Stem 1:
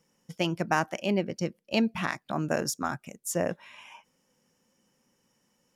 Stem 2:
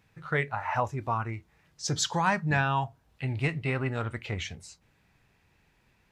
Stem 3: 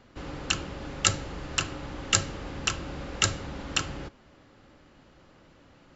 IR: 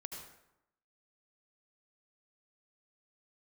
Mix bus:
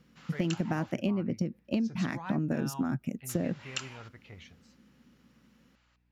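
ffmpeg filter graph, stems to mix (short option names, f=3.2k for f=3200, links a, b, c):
-filter_complex "[0:a]equalizer=f=125:t=o:w=1:g=9,equalizer=f=250:t=o:w=1:g=12,equalizer=f=1k:t=o:w=1:g=-6,equalizer=f=4k:t=o:w=1:g=-4,equalizer=f=8k:t=o:w=1:g=-9,acompressor=threshold=-23dB:ratio=6,volume=0.5dB[a];[1:a]lowpass=f=6.1k:w=0.5412,lowpass=f=6.1k:w=1.3066,aeval=exprs='val(0)+0.00178*(sin(2*PI*60*n/s)+sin(2*PI*2*60*n/s)/2+sin(2*PI*3*60*n/s)/3+sin(2*PI*4*60*n/s)/4+sin(2*PI*5*60*n/s)/5)':c=same,volume=-16dB[b];[2:a]highpass=1.3k,volume=-8dB,asplit=3[c][d][e];[c]atrim=end=0.92,asetpts=PTS-STARTPTS,afade=t=out:st=0.916:d=0.004:c=hsin[f];[d]atrim=start=0.92:end=3.29,asetpts=PTS-STARTPTS,volume=0[g];[e]atrim=start=3.29,asetpts=PTS-STARTPTS,afade=t=in:d=0.004:c=hsin[h];[f][g][h]concat=n=3:v=0:a=1[i];[a][b][i]amix=inputs=3:normalize=0,acompressor=threshold=-26dB:ratio=6"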